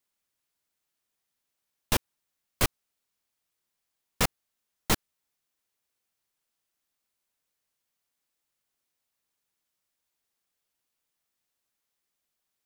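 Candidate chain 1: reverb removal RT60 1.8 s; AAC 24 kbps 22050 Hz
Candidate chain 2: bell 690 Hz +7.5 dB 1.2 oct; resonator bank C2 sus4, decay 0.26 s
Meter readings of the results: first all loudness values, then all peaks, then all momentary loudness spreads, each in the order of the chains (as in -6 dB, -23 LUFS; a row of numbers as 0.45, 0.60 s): -31.0, -38.5 LUFS; -11.0, -18.5 dBFS; 1, 16 LU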